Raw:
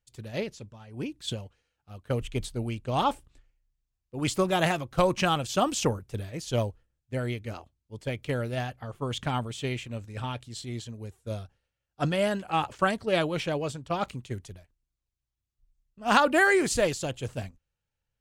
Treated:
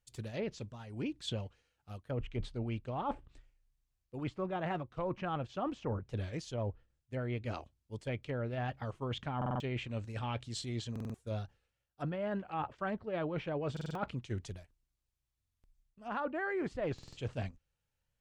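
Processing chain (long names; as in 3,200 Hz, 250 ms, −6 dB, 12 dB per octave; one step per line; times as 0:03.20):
treble cut that deepens with the level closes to 1,700 Hz, closed at −25.5 dBFS
reversed playback
downward compressor 12 to 1, threshold −33 dBFS, peak gain reduction 17 dB
reversed playback
buffer that repeats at 0:09.37/0:10.91/0:13.72/0:15.41/0:16.94, samples 2,048, times 4
wow of a warped record 45 rpm, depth 100 cents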